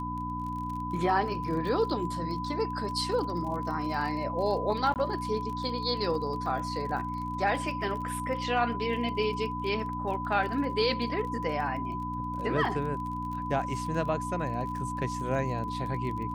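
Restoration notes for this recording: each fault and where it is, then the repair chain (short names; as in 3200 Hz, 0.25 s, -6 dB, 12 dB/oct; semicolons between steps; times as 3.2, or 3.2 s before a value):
crackle 33/s -37 dBFS
hum 60 Hz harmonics 5 -37 dBFS
tone 1000 Hz -34 dBFS
4.94–4.96 gap 18 ms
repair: de-click; de-hum 60 Hz, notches 5; notch 1000 Hz, Q 30; interpolate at 4.94, 18 ms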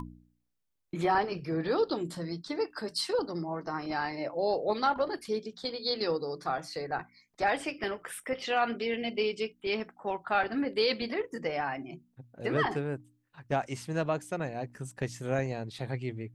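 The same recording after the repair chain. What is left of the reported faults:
none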